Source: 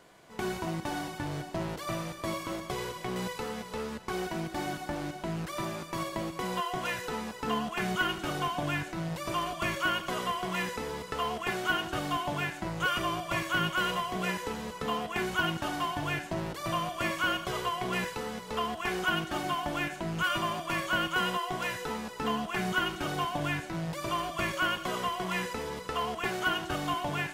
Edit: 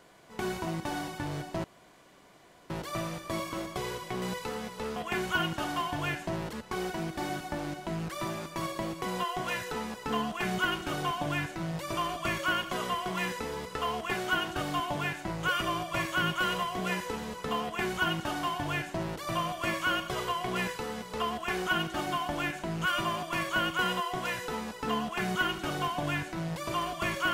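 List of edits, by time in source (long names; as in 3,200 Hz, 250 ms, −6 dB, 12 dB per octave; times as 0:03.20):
0:01.64: splice in room tone 1.06 s
0:15.00–0:16.57: duplicate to 0:03.90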